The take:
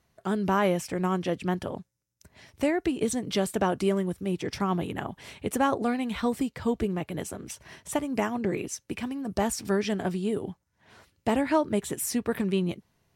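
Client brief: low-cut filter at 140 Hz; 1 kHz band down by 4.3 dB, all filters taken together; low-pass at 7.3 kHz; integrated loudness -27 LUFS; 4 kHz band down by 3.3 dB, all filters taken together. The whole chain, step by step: high-pass 140 Hz; low-pass 7.3 kHz; peaking EQ 1 kHz -5.5 dB; peaking EQ 4 kHz -4 dB; trim +3.5 dB

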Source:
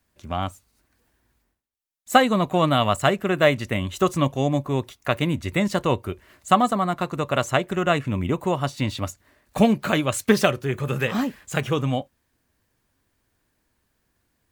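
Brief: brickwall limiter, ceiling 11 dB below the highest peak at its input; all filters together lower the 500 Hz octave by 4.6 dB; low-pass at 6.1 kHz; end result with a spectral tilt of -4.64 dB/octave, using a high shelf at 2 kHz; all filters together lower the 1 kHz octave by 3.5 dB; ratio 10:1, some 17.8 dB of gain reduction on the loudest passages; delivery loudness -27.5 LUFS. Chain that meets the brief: low-pass 6.1 kHz; peaking EQ 500 Hz -5 dB; peaking EQ 1 kHz -4.5 dB; treble shelf 2 kHz +5.5 dB; compression 10:1, threshold -32 dBFS; trim +11.5 dB; peak limiter -16 dBFS

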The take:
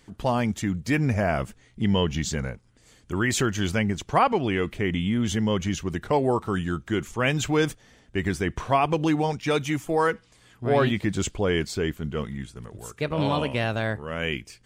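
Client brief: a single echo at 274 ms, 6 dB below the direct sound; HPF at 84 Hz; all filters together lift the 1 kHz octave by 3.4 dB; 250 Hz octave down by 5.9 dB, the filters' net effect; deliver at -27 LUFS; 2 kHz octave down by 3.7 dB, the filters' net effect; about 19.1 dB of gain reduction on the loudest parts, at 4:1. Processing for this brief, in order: high-pass 84 Hz; peaking EQ 250 Hz -8.5 dB; peaking EQ 1 kHz +6.5 dB; peaking EQ 2 kHz -7 dB; compression 4:1, threshold -37 dBFS; delay 274 ms -6 dB; trim +12 dB

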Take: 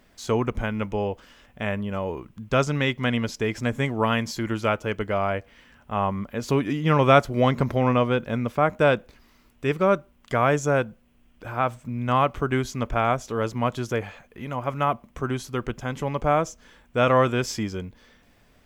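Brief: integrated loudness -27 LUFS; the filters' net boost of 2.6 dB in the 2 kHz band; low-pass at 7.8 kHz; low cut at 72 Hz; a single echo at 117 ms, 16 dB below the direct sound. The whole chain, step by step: high-pass 72 Hz; low-pass 7.8 kHz; peaking EQ 2 kHz +3.5 dB; delay 117 ms -16 dB; trim -3 dB

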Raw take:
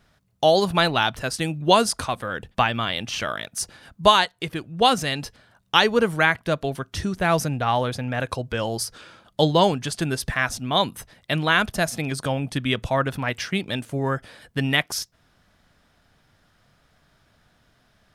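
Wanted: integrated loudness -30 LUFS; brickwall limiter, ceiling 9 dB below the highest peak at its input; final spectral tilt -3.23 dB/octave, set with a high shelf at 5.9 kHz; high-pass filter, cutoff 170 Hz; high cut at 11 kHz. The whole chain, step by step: high-pass 170 Hz; low-pass 11 kHz; treble shelf 5.9 kHz +5.5 dB; trim -5 dB; peak limiter -14.5 dBFS

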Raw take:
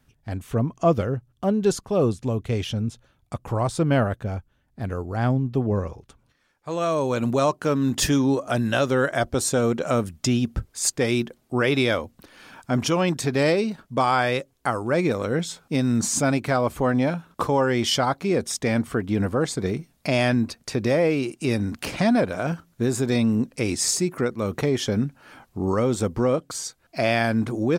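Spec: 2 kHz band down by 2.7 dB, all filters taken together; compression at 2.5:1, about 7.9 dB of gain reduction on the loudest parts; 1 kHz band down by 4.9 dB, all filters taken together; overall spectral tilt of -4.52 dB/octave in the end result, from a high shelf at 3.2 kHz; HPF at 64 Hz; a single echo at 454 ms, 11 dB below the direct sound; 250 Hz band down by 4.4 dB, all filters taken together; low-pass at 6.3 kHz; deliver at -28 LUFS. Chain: high-pass 64 Hz; low-pass 6.3 kHz; peaking EQ 250 Hz -5 dB; peaking EQ 1 kHz -6.5 dB; peaking EQ 2 kHz -3 dB; treble shelf 3.2 kHz +5 dB; compression 2.5:1, threshold -30 dBFS; delay 454 ms -11 dB; trim +4 dB

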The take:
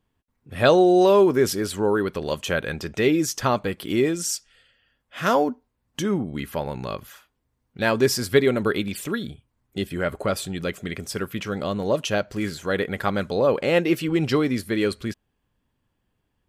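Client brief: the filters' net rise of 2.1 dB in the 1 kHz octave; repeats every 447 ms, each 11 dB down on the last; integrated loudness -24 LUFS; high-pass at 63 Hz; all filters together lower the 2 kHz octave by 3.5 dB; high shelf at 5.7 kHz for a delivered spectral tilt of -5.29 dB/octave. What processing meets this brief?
high-pass 63 Hz; peaking EQ 1 kHz +4.5 dB; peaking EQ 2 kHz -5.5 dB; treble shelf 5.7 kHz -8 dB; feedback delay 447 ms, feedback 28%, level -11 dB; trim -1.5 dB

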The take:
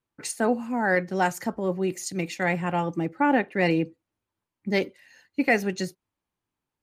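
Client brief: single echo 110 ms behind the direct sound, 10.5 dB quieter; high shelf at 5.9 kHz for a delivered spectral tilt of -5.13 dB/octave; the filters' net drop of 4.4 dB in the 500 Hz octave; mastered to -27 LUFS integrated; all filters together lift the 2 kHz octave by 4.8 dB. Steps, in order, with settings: peaking EQ 500 Hz -6 dB; peaking EQ 2 kHz +6.5 dB; treble shelf 5.9 kHz -6.5 dB; delay 110 ms -10.5 dB; trim -2 dB

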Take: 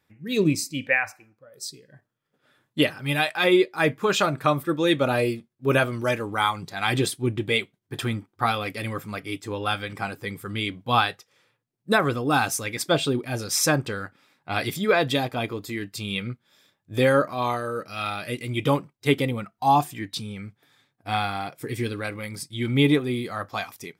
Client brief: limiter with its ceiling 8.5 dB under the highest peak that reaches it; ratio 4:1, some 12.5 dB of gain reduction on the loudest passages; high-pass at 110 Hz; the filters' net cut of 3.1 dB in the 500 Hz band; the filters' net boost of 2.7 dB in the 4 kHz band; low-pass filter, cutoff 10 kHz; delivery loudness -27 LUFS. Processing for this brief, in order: high-pass 110 Hz; low-pass 10 kHz; peaking EQ 500 Hz -4 dB; peaking EQ 4 kHz +3.5 dB; compression 4:1, threshold -31 dBFS; trim +9.5 dB; peak limiter -14.5 dBFS

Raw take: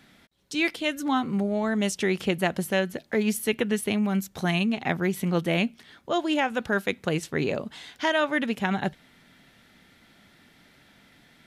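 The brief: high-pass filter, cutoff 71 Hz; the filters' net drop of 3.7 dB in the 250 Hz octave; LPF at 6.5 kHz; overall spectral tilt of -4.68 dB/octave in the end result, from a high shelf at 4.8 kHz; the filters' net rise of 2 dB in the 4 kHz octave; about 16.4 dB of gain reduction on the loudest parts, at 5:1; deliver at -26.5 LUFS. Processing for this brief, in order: high-pass 71 Hz; low-pass 6.5 kHz; peaking EQ 250 Hz -5 dB; peaking EQ 4 kHz +5.5 dB; treble shelf 4.8 kHz -5 dB; compression 5:1, threshold -40 dBFS; trim +15.5 dB

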